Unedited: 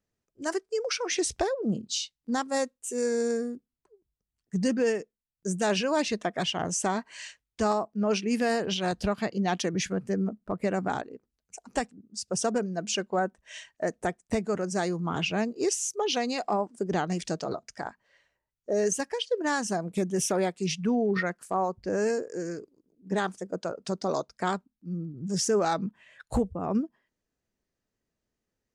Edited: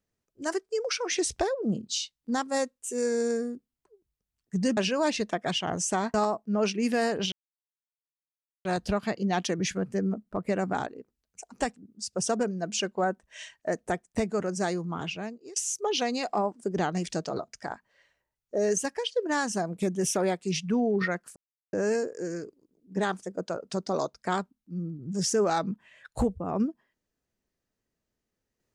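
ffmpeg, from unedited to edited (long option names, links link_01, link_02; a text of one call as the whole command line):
ffmpeg -i in.wav -filter_complex "[0:a]asplit=7[link_01][link_02][link_03][link_04][link_05][link_06][link_07];[link_01]atrim=end=4.772[link_08];[link_02]atrim=start=5.688:end=7.062[link_09];[link_03]atrim=start=7.618:end=8.8,asetpts=PTS-STARTPTS,afade=type=out:start_time=1.178:duration=0.004:curve=hsin,apad=pad_dur=1.33[link_10];[link_04]atrim=start=8.8:end=15.71,asetpts=PTS-STARTPTS,afade=type=in:duration=0.004:curve=hsin,afade=type=out:start_time=5.98:duration=0.93:silence=0.0668344[link_11];[link_05]atrim=start=15.71:end=21.51,asetpts=PTS-STARTPTS,afade=type=in:duration=0.004:curve=hsin:silence=0.0668344,afade=type=out:start_time=5.796:duration=0.004:curve=hsin[link_12];[link_06]atrim=start=21.51:end=21.88,asetpts=PTS-STARTPTS,volume=0[link_13];[link_07]atrim=start=21.88,asetpts=PTS-STARTPTS,afade=type=in:duration=0.004:curve=hsin[link_14];[link_08][link_09]acrossfade=duration=0.004:curve1=hsin:curve2=hsin[link_15];[link_10][link_11][link_12][link_13][link_14]concat=n=5:v=0:a=1[link_16];[link_15][link_16]acrossfade=duration=0.004:curve1=hsin:curve2=hsin" out.wav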